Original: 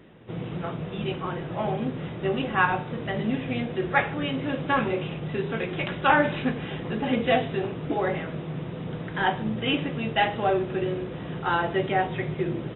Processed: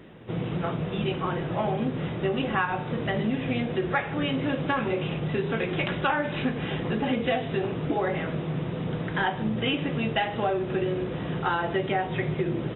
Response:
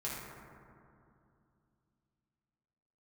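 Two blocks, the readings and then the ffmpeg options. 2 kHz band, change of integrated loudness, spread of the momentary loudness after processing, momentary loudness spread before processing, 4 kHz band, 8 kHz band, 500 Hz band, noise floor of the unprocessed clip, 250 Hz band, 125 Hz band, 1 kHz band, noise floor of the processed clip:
−2.5 dB, −1.0 dB, 4 LU, 9 LU, −0.5 dB, can't be measured, −0.5 dB, −36 dBFS, +0.5 dB, +1.5 dB, −3.0 dB, −33 dBFS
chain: -af "acompressor=threshold=-26dB:ratio=6,volume=3.5dB"

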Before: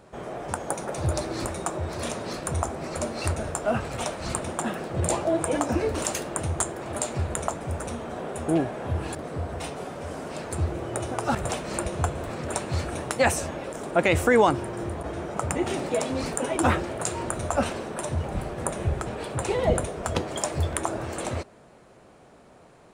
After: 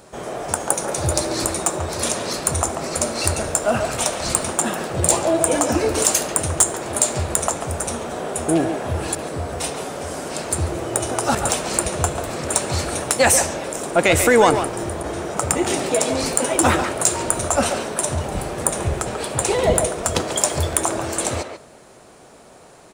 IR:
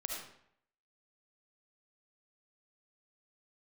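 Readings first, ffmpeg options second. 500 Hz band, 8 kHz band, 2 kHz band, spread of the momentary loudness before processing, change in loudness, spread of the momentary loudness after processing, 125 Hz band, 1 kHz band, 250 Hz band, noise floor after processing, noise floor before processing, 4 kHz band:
+6.0 dB, +13.5 dB, +6.5 dB, 9 LU, +7.5 dB, 9 LU, +3.0 dB, +6.0 dB, +5.0 dB, −46 dBFS, −52 dBFS, +10.5 dB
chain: -filter_complex "[0:a]bass=frequency=250:gain=-3,treble=frequency=4000:gain=10,asoftclip=type=tanh:threshold=-9dB,asplit=2[link_01][link_02];[link_02]adelay=140,highpass=300,lowpass=3400,asoftclip=type=hard:threshold=-17.5dB,volume=-6dB[link_03];[link_01][link_03]amix=inputs=2:normalize=0,asplit=2[link_04][link_05];[1:a]atrim=start_sample=2205[link_06];[link_05][link_06]afir=irnorm=-1:irlink=0,volume=-16.5dB[link_07];[link_04][link_07]amix=inputs=2:normalize=0,volume=5dB"

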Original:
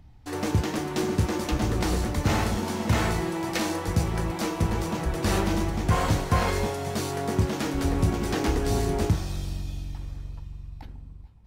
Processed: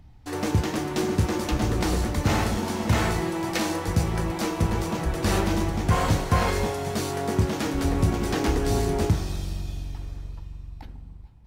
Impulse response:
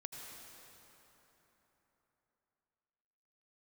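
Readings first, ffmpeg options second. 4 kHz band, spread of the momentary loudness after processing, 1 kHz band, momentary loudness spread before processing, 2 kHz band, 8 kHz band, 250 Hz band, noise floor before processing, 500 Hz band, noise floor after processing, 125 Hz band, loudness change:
+1.0 dB, 13 LU, +1.5 dB, 13 LU, +1.0 dB, +1.0 dB, +1.5 dB, −43 dBFS, +1.5 dB, −42 dBFS, +1.0 dB, +1.5 dB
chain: -filter_complex "[0:a]asplit=2[link_01][link_02];[1:a]atrim=start_sample=2205,asetrate=52920,aresample=44100[link_03];[link_02][link_03]afir=irnorm=-1:irlink=0,volume=-9.5dB[link_04];[link_01][link_04]amix=inputs=2:normalize=0"

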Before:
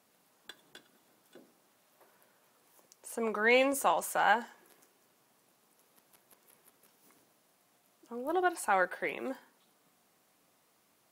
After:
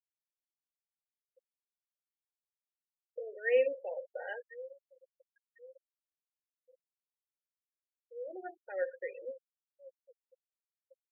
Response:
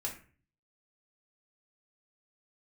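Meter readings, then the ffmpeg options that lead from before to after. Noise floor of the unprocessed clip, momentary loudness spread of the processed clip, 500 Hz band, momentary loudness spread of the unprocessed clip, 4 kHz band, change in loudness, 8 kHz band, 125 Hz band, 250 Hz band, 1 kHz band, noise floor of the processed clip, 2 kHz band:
−71 dBFS, 20 LU, −1.5 dB, 16 LU, below −15 dB, −6.5 dB, below −35 dB, can't be measured, −19.5 dB, −21.0 dB, below −85 dBFS, −10.0 dB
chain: -filter_complex "[0:a]asplit=3[link_01][link_02][link_03];[link_01]bandpass=frequency=530:width_type=q:width=8,volume=0dB[link_04];[link_02]bandpass=frequency=1840:width_type=q:width=8,volume=-6dB[link_05];[link_03]bandpass=frequency=2480:width_type=q:width=8,volume=-9dB[link_06];[link_04][link_05][link_06]amix=inputs=3:normalize=0,aecho=1:1:1047|2094|3141:0.112|0.0449|0.018,asplit=2[link_07][link_08];[1:a]atrim=start_sample=2205,asetrate=48510,aresample=44100[link_09];[link_08][link_09]afir=irnorm=-1:irlink=0,volume=-2dB[link_10];[link_07][link_10]amix=inputs=2:normalize=0,afftfilt=real='re*gte(hypot(re,im),0.0224)':imag='im*gte(hypot(re,im),0.0224)':win_size=1024:overlap=0.75,volume=-3dB"

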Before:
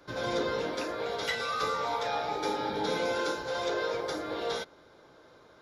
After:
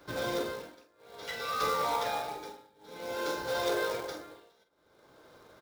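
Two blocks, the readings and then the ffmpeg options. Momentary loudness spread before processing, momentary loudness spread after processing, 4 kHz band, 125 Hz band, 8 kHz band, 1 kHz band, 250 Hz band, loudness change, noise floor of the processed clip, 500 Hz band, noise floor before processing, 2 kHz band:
4 LU, 20 LU, −3.5 dB, −4.0 dB, 0.0 dB, −2.0 dB, −5.0 dB, −2.0 dB, −67 dBFS, −3.5 dB, −58 dBFS, −3.5 dB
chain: -filter_complex "[0:a]acrusher=bits=3:mode=log:mix=0:aa=0.000001,tremolo=f=0.55:d=0.98,asplit=2[link_01][link_02];[link_02]adelay=46,volume=-9.5dB[link_03];[link_01][link_03]amix=inputs=2:normalize=0"

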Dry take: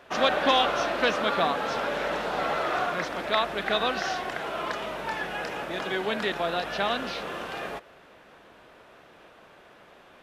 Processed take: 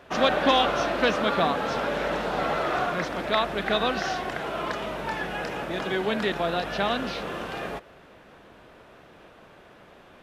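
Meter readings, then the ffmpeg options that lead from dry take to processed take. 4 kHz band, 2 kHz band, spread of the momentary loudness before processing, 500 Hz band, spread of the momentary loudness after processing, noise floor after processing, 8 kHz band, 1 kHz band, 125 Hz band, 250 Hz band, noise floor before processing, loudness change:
0.0 dB, 0.0 dB, 10 LU, +2.0 dB, 10 LU, −52 dBFS, 0.0 dB, +1.0 dB, +6.0 dB, +4.5 dB, −54 dBFS, +1.0 dB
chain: -af "lowshelf=frequency=300:gain=8"

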